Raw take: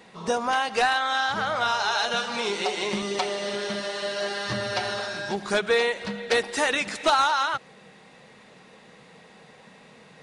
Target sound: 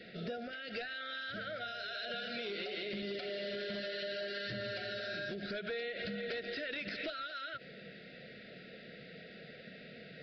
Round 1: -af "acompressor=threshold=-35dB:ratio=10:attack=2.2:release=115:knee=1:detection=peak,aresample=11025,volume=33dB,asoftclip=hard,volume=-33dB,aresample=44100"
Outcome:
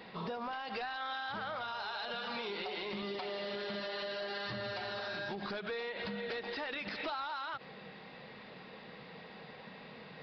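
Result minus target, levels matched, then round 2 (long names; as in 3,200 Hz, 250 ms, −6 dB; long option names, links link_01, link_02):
1,000 Hz band +7.0 dB
-af "acompressor=threshold=-35dB:ratio=10:attack=2.2:release=115:knee=1:detection=peak,asuperstop=centerf=980:order=20:qfactor=1.6,aresample=11025,volume=33dB,asoftclip=hard,volume=-33dB,aresample=44100"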